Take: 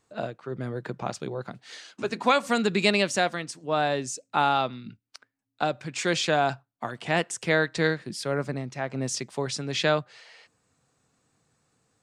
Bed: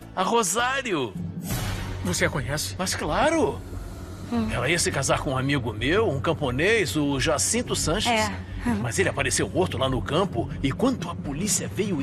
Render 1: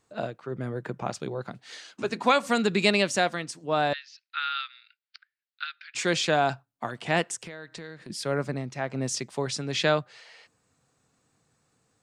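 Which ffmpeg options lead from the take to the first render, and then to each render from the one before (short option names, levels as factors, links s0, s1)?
-filter_complex "[0:a]asettb=1/sr,asplit=3[s0][s1][s2];[s0]atrim=end=0.464[s3];[s1]atrim=start=0.46:end=1.11,asetpts=PTS-STARTPTS,afade=t=in:d=0.004:c=qsin,afade=t=out:st=0.646:d=0.004:c=qsin,equalizer=f=4200:w=2.3:g=-6[s4];[s2]atrim=start=1.106[s5];[s3][s4]acrossfade=d=0.004:c1=hsin:c2=qsin[s6];[s6][s5]acrossfade=d=0.004:c1=qsin:c2=hsin,asettb=1/sr,asplit=3[s7][s8][s9];[s7]atrim=end=3.934[s10];[s8]atrim=start=3.93:end=5.95,asetpts=PTS-STARTPTS,afade=t=in:d=0.004:c=qsin,afade=t=out:st=2.016:d=0.004:c=qsin,asuperpass=centerf=2600:order=12:qfactor=0.74[s11];[s9]atrim=start=5.946[s12];[s10][s11]acrossfade=d=0.004:c1=hsin:c2=qsin[s13];[s13][s12]acrossfade=d=0.004:c1=qsin:c2=hsin,asplit=3[s14][s15][s16];[s14]afade=t=out:st=7.35:d=0.02[s17];[s15]acompressor=threshold=0.0126:ratio=6:attack=3.2:release=140:knee=1:detection=peak,afade=t=in:st=7.35:d=0.02,afade=t=out:st=8.09:d=0.02[s18];[s16]afade=t=in:st=8.09:d=0.02[s19];[s17][s18][s19]amix=inputs=3:normalize=0"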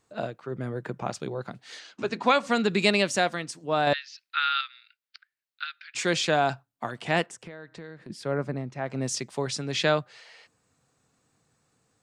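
-filter_complex "[0:a]asettb=1/sr,asplit=3[s0][s1][s2];[s0]atrim=end=1.794[s3];[s1]atrim=start=1.79:end=2.7,asetpts=PTS-STARTPTS,afade=t=in:d=0.004:c=qsin,afade=t=out:st=0.906:d=0.004:c=qsin,lowpass=6300[s4];[s2]atrim=start=2.696[s5];[s3][s4]acrossfade=d=0.004:c1=hsin:c2=qsin[s6];[s6][s5]acrossfade=d=0.004:c1=qsin:c2=hsin,asettb=1/sr,asplit=3[s7][s8][s9];[s7]atrim=end=7.264[s10];[s8]atrim=start=7.26:end=8.86,asetpts=PTS-STARTPTS,afade=t=in:d=0.004:c=qsin,afade=t=out:st=1.596:d=0.004:c=qsin,highshelf=f=2700:g=-11.5[s11];[s9]atrim=start=8.856[s12];[s10][s11]acrossfade=d=0.004:c1=hsin:c2=qsin[s13];[s13][s12]acrossfade=d=0.004:c1=qsin:c2=hsin,asplit=3[s14][s15][s16];[s14]atrim=end=3.872[s17];[s15]atrim=start=3.868:end=4.612,asetpts=PTS-STARTPTS,volume=1.68[s18];[s16]atrim=start=4.608[s19];[s17][s18]acrossfade=d=0.004:c1=hsin:c2=hsin[s20];[s20][s19]acrossfade=d=0.004:c1=hsin:c2=hsin"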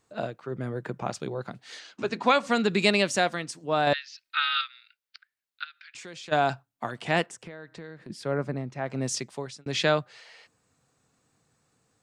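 -filter_complex "[0:a]asettb=1/sr,asplit=3[s0][s1][s2];[s0]atrim=end=4.244[s3];[s1]atrim=start=4.24:end=4.64,asetpts=PTS-STARTPTS,afade=t=in:d=0.004:c=qsin,afade=t=out:st=0.396:d=0.004:c=qsin,aecho=1:1:3.2:0.85,atrim=end_sample=17640[s4];[s2]atrim=start=4.636[s5];[s3][s4]acrossfade=d=0.004:c1=hsin:c2=qsin[s6];[s6][s5]acrossfade=d=0.004:c1=qsin:c2=hsin,asplit=3[s7][s8][s9];[s7]afade=t=out:st=5.63:d=0.02[s10];[s8]acompressor=threshold=0.00562:ratio=3:attack=3.2:release=140:knee=1:detection=peak,afade=t=in:st=5.63:d=0.02,afade=t=out:st=6.31:d=0.02[s11];[s9]afade=t=in:st=6.31:d=0.02[s12];[s10][s11][s12]amix=inputs=3:normalize=0,asplit=2[s13][s14];[s13]atrim=end=9.66,asetpts=PTS-STARTPTS,afade=t=out:st=9.18:d=0.48[s15];[s14]atrim=start=9.66,asetpts=PTS-STARTPTS,afade=t=in:d=0.004:c=hsin[s16];[s15][s16]concat=n=2:v=0:a=1"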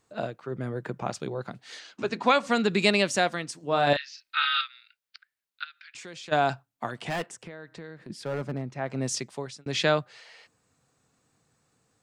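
-filter_complex "[0:a]asettb=1/sr,asplit=3[s0][s1][s2];[s0]atrim=end=3.594[s3];[s1]atrim=start=3.59:end=4.61,asetpts=PTS-STARTPTS,afade=t=in:d=0.004:c=qsin,afade=t=out:st=1.016:d=0.004:c=qsin,asplit=2[s4][s5];[s5]adelay=35,volume=0.447[s6];[s4][s6]amix=inputs=2:normalize=0,atrim=end_sample=44982[s7];[s2]atrim=start=4.606[s8];[s3][s7]acrossfade=d=0.004:c1=hsin:c2=qsin[s9];[s9][s8]acrossfade=d=0.004:c1=qsin:c2=hsin,asettb=1/sr,asplit=3[s10][s11][s12];[s10]atrim=end=7.084[s13];[s11]atrim=start=7.08:end=8.72,asetpts=PTS-STARTPTS,afade=t=in:d=0.004:c=qsin,afade=t=out:st=1.636:d=0.004:c=qsin,asoftclip=type=hard:threshold=0.0501[s14];[s12]atrim=start=8.716[s15];[s13][s14]acrossfade=d=0.004:c1=hsin:c2=qsin[s16];[s16][s15]acrossfade=d=0.004:c1=qsin:c2=hsin"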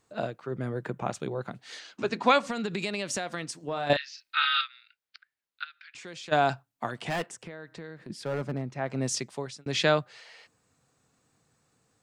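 -filter_complex "[0:a]asettb=1/sr,asplit=3[s0][s1][s2];[s0]atrim=end=0.884[s3];[s1]atrim=start=0.88:end=1.56,asetpts=PTS-STARTPTS,afade=t=in:d=0.004:c=qsin,afade=t=out:st=0.676:d=0.004:c=qsin,equalizer=f=4900:w=3.8:g=-9.5[s4];[s2]atrim=start=1.556[s5];[s3][s4]acrossfade=d=0.004:c1=hsin:c2=qsin[s6];[s6][s5]acrossfade=d=0.004:c1=qsin:c2=hsin,asettb=1/sr,asplit=3[s7][s8][s9];[s7]atrim=end=2.494[s10];[s8]atrim=start=2.49:end=3.9,asetpts=PTS-STARTPTS,afade=t=in:d=0.004:c=qsin,afade=t=out:st=1.406:d=0.004:c=qsin,acompressor=threshold=0.0447:ratio=8:attack=3.2:release=140:knee=1:detection=peak[s11];[s9]atrim=start=3.896[s12];[s10][s11]acrossfade=d=0.004:c1=hsin:c2=qsin[s13];[s13][s12]acrossfade=d=0.004:c1=qsin:c2=hsin,asettb=1/sr,asplit=3[s14][s15][s16];[s14]atrim=end=4.654[s17];[s15]atrim=start=4.65:end=6.06,asetpts=PTS-STARTPTS,afade=t=in:d=0.004:c=qsin,afade=t=out:st=1.406:d=0.004:c=qsin,highshelf=f=5300:g=-7[s18];[s16]atrim=start=6.056[s19];[s17][s18]acrossfade=d=0.004:c1=hsin:c2=qsin[s20];[s20][s19]acrossfade=d=0.004:c1=qsin:c2=hsin"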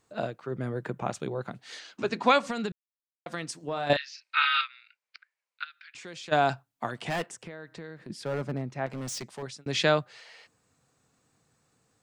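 -filter_complex "[0:a]asettb=1/sr,asplit=3[s0][s1][s2];[s0]atrim=end=4.144[s3];[s1]atrim=start=4.14:end=5.63,asetpts=PTS-STARTPTS,afade=t=in:d=0.004:c=qsin,afade=t=out:st=1.486:d=0.004:c=qsin,highpass=f=430:w=0.5412,highpass=f=430:w=1.3066,equalizer=f=540:t=q:w=4:g=5,equalizer=f=1000:t=q:w=4:g=6,equalizer=f=2300:t=q:w=4:g=7,equalizer=f=3500:t=q:w=4:g=-4,lowpass=f=8800:w=0.5412,lowpass=f=8800:w=1.3066[s4];[s2]atrim=start=5.626[s5];[s3][s4]acrossfade=d=0.004:c1=hsin:c2=qsin[s6];[s6][s5]acrossfade=d=0.004:c1=qsin:c2=hsin,asettb=1/sr,asplit=3[s7][s8][s9];[s7]atrim=end=8.864[s10];[s8]atrim=start=8.86:end=9.43,asetpts=PTS-STARTPTS,afade=t=in:d=0.004:c=qsin,afade=t=out:st=0.566:d=0.004:c=qsin,asoftclip=type=hard:threshold=0.0211[s11];[s9]atrim=start=9.426[s12];[s10][s11]acrossfade=d=0.004:c1=hsin:c2=qsin[s13];[s13][s12]acrossfade=d=0.004:c1=qsin:c2=hsin,asplit=3[s14][s15][s16];[s14]atrim=end=2.72,asetpts=PTS-STARTPTS,afade=t=out:st=2.716:d=0.004:c=hsin[s17];[s15]atrim=start=2.72:end=3.26,asetpts=PTS-STARTPTS,volume=0[s18];[s16]atrim=start=3.26,asetpts=PTS-STARTPTS,afade=t=in:d=0.004:c=hsin[s19];[s17][s18][s19]concat=n=3:v=0:a=1"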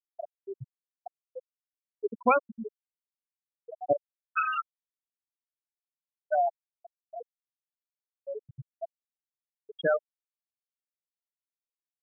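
-af "bandreject=f=50:t=h:w=6,bandreject=f=100:t=h:w=6,bandreject=f=150:t=h:w=6,bandreject=f=200:t=h:w=6,afftfilt=real='re*gte(hypot(re,im),0.282)':imag='im*gte(hypot(re,im),0.282)':win_size=1024:overlap=0.75"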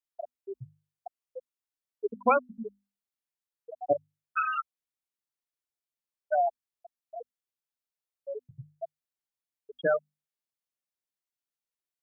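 -filter_complex "[0:a]acrossover=split=2700[s0][s1];[s1]acompressor=threshold=0.00178:ratio=4:attack=1:release=60[s2];[s0][s2]amix=inputs=2:normalize=0,bandreject=f=50:t=h:w=6,bandreject=f=100:t=h:w=6,bandreject=f=150:t=h:w=6,bandreject=f=200:t=h:w=6,bandreject=f=250:t=h:w=6"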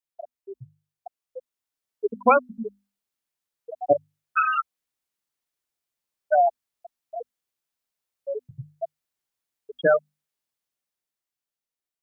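-af "dynaudnorm=f=310:g=9:m=2.24"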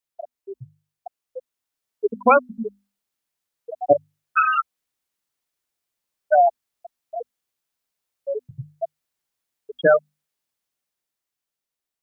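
-af "volume=1.5,alimiter=limit=0.708:level=0:latency=1"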